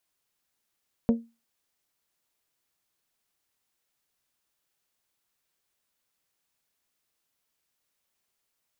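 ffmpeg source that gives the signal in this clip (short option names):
-f lavfi -i "aevalsrc='0.178*pow(10,-3*t/0.27)*sin(2*PI*231*t)+0.075*pow(10,-3*t/0.166)*sin(2*PI*462*t)+0.0316*pow(10,-3*t/0.146)*sin(2*PI*554.4*t)+0.0133*pow(10,-3*t/0.125)*sin(2*PI*693*t)+0.00562*pow(10,-3*t/0.102)*sin(2*PI*924*t)':d=0.89:s=44100"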